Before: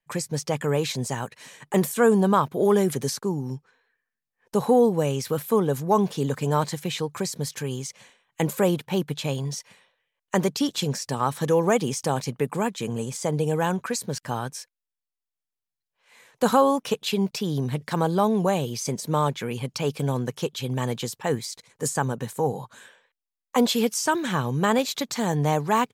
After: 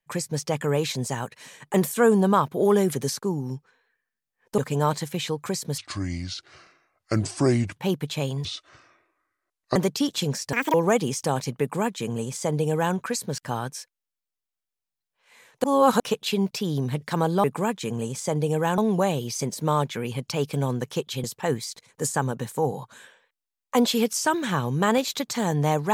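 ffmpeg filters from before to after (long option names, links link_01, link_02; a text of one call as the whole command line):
ffmpeg -i in.wav -filter_complex "[0:a]asplit=13[link_01][link_02][link_03][link_04][link_05][link_06][link_07][link_08][link_09][link_10][link_11][link_12][link_13];[link_01]atrim=end=4.582[link_14];[link_02]atrim=start=6.288:end=7.494[link_15];[link_03]atrim=start=7.49:end=8.84,asetpts=PTS-STARTPTS,asetrate=29988,aresample=44100,atrim=end_sample=87551,asetpts=PTS-STARTPTS[link_16];[link_04]atrim=start=8.836:end=9.524[link_17];[link_05]atrim=start=9.52:end=10.36,asetpts=PTS-STARTPTS,asetrate=28224,aresample=44100,atrim=end_sample=57881,asetpts=PTS-STARTPTS[link_18];[link_06]atrim=start=10.356:end=11.134[link_19];[link_07]atrim=start=11.13:end=11.54,asetpts=PTS-STARTPTS,asetrate=85554,aresample=44100,atrim=end_sample=9320,asetpts=PTS-STARTPTS[link_20];[link_08]atrim=start=11.536:end=16.442[link_21];[link_09]atrim=start=16.438:end=16.802,asetpts=PTS-STARTPTS,areverse[link_22];[link_10]atrim=start=16.798:end=18.242[link_23];[link_11]atrim=start=12.408:end=13.752[link_24];[link_12]atrim=start=18.238:end=20.702[link_25];[link_13]atrim=start=21.048[link_26];[link_14][link_15]acrossfade=duration=0.004:curve1=hsin:curve2=hsin[link_27];[link_27][link_16]acrossfade=duration=0.004:curve1=hsin:curve2=hsin[link_28];[link_28][link_17]acrossfade=duration=0.004:curve1=hsin:curve2=hsin[link_29];[link_29][link_18]acrossfade=duration=0.004:curve1=hsin:curve2=hsin[link_30];[link_30][link_19]acrossfade=duration=0.004:curve1=hsin:curve2=hsin[link_31];[link_31][link_20]acrossfade=duration=0.004:curve1=hsin:curve2=hsin[link_32];[link_32][link_21]acrossfade=duration=0.004:curve1=hsin:curve2=hsin[link_33];[link_33][link_22]acrossfade=duration=0.004:curve1=hsin:curve2=hsin[link_34];[link_34][link_23]acrossfade=duration=0.004:curve1=hsin:curve2=hsin[link_35];[link_35][link_24]acrossfade=duration=0.004:curve1=hsin:curve2=hsin[link_36];[link_36][link_25]acrossfade=duration=0.004:curve1=hsin:curve2=hsin[link_37];[link_37][link_26]acrossfade=duration=0.004:curve1=hsin:curve2=hsin" out.wav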